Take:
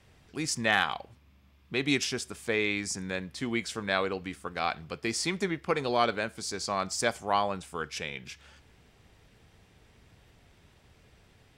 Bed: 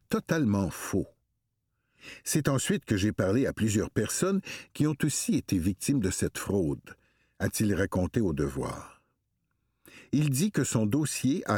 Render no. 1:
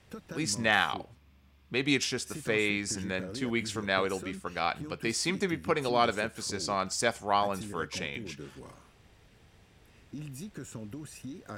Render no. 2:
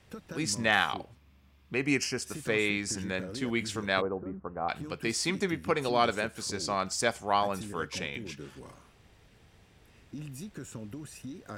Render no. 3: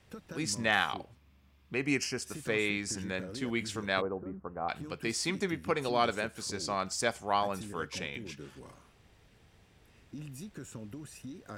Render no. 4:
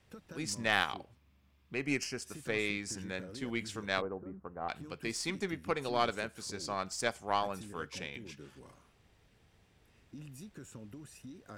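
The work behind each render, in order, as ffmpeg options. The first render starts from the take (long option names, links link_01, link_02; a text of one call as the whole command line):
ffmpeg -i in.wav -i bed.wav -filter_complex "[1:a]volume=-15.5dB[link_01];[0:a][link_01]amix=inputs=2:normalize=0" out.wav
ffmpeg -i in.wav -filter_complex "[0:a]asettb=1/sr,asplit=3[link_01][link_02][link_03];[link_01]atrim=end=1.744[link_04];[link_02]atrim=start=1.74:end=2.22,asetpts=PTS-STARTPTS,afade=type=in:duration=0.004:curve=qsin,afade=type=out:start_time=0.476:duration=0.004:curve=qsin,asuperstop=centerf=3600:order=4:qfactor=2.4[link_05];[link_03]atrim=start=2.216[link_06];[link_04][link_05]acrossfade=duration=0.004:curve1=hsin:curve2=qsin[link_07];[link_07][link_06]acrossfade=duration=0.004:curve1=qsin:curve2=hsin,asplit=3[link_08][link_09][link_10];[link_08]afade=type=out:start_time=4:duration=0.02[link_11];[link_09]lowpass=frequency=1100:width=0.5412,lowpass=frequency=1100:width=1.3066,afade=type=in:start_time=4:duration=0.02,afade=type=out:start_time=4.68:duration=0.02[link_12];[link_10]afade=type=in:start_time=4.68:duration=0.02[link_13];[link_11][link_12][link_13]amix=inputs=3:normalize=0" out.wav
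ffmpeg -i in.wav -af "volume=-2.5dB" out.wav
ffmpeg -i in.wav -af "aeval=exprs='0.251*(cos(1*acos(clip(val(0)/0.251,-1,1)))-cos(1*PI/2))+0.0224*(cos(3*acos(clip(val(0)/0.251,-1,1)))-cos(3*PI/2))+0.00501*(cos(7*acos(clip(val(0)/0.251,-1,1)))-cos(7*PI/2))+0.00282*(cos(8*acos(clip(val(0)/0.251,-1,1)))-cos(8*PI/2))':channel_layout=same" out.wav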